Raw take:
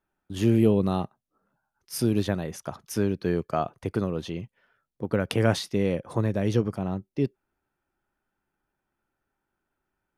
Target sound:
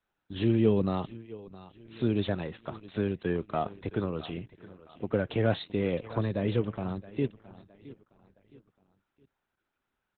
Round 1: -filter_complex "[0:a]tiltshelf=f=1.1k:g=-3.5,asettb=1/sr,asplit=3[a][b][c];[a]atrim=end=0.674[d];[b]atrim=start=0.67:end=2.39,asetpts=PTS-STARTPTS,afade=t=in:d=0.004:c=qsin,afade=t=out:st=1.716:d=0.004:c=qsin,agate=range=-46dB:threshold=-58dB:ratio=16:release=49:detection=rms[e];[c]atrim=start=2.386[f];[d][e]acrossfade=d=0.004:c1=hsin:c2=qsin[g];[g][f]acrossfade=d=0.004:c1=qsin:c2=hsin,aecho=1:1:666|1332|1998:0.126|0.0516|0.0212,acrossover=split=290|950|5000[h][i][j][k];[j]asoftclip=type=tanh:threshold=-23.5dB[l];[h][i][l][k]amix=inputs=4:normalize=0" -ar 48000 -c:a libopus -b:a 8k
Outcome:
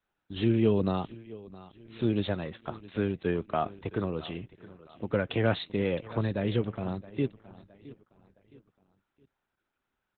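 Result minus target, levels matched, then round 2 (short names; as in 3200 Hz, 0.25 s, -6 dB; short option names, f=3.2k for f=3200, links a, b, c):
soft clip: distortion -7 dB
-filter_complex "[0:a]tiltshelf=f=1.1k:g=-3.5,asettb=1/sr,asplit=3[a][b][c];[a]atrim=end=0.674[d];[b]atrim=start=0.67:end=2.39,asetpts=PTS-STARTPTS,afade=t=in:d=0.004:c=qsin,afade=t=out:st=1.716:d=0.004:c=qsin,agate=range=-46dB:threshold=-58dB:ratio=16:release=49:detection=rms[e];[c]atrim=start=2.386[f];[d][e]acrossfade=d=0.004:c1=hsin:c2=qsin[g];[g][f]acrossfade=d=0.004:c1=qsin:c2=hsin,aecho=1:1:666|1332|1998:0.126|0.0516|0.0212,acrossover=split=290|950|5000[h][i][j][k];[j]asoftclip=type=tanh:threshold=-34.5dB[l];[h][i][l][k]amix=inputs=4:normalize=0" -ar 48000 -c:a libopus -b:a 8k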